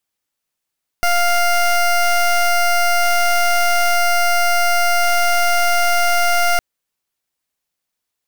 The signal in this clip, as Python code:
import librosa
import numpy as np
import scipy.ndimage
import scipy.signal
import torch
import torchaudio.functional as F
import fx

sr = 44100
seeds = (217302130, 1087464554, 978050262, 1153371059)

y = fx.pulse(sr, length_s=5.56, hz=700.0, level_db=-14.5, duty_pct=19)